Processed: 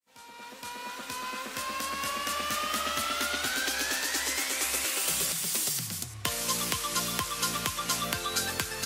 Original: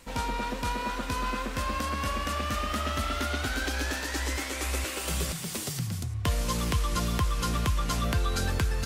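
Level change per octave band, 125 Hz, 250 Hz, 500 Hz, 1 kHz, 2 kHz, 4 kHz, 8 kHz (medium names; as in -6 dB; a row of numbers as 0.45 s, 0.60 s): -13.5 dB, -7.0 dB, -3.5 dB, -1.5 dB, +1.0 dB, +4.0 dB, +6.5 dB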